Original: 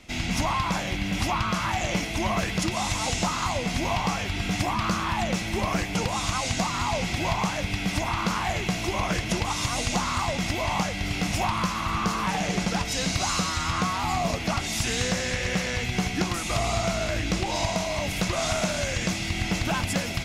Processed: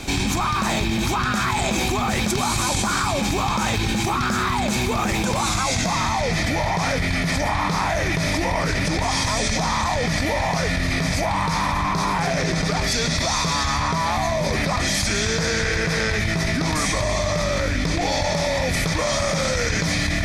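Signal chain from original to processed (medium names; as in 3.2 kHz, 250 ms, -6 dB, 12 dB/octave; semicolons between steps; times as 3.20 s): Doppler pass-by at 5.73 s, 42 m/s, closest 17 m; band-stop 2.9 kHz, Q 5.3; in parallel at -11 dB: saturation -26 dBFS, distortion -12 dB; on the sum: level flattener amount 100%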